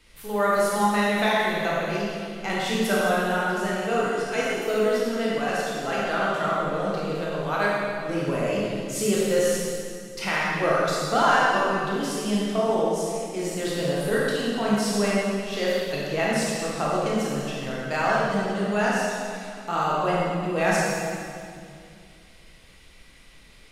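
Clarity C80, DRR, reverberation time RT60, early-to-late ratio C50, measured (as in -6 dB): -1.0 dB, -6.5 dB, 2.3 s, -3.0 dB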